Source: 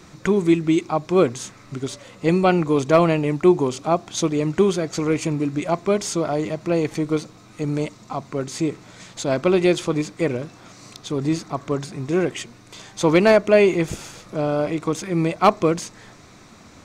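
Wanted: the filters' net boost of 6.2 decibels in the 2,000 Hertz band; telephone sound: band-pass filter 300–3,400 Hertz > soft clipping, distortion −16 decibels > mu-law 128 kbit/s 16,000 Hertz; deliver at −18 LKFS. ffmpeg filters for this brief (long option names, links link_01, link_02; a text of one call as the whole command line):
ffmpeg -i in.wav -af "highpass=300,lowpass=3400,equalizer=frequency=2000:width_type=o:gain=8.5,asoftclip=threshold=-7.5dB,volume=5dB" -ar 16000 -c:a pcm_mulaw out.wav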